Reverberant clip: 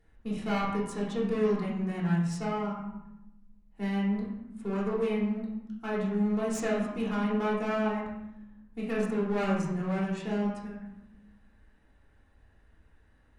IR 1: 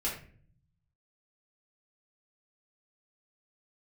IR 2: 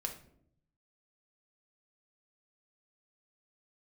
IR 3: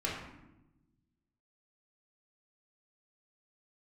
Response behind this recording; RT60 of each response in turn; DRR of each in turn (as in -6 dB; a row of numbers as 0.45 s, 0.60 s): 3; 0.45 s, no single decay rate, 0.95 s; -6.0 dB, 2.5 dB, -6.0 dB